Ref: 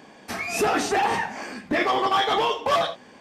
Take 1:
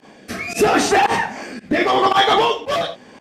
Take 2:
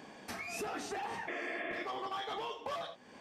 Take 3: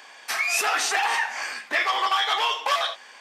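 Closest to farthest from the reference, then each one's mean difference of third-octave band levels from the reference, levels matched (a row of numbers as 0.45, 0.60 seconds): 1, 2, 3; 2.5, 4.0, 9.5 decibels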